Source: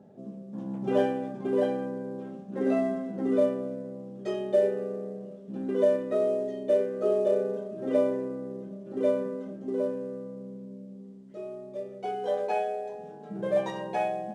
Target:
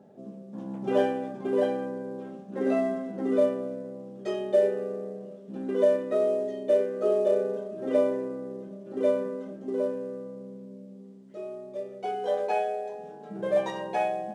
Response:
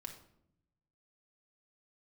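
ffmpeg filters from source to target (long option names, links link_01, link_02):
-af "lowshelf=frequency=160:gain=-10,volume=2dB"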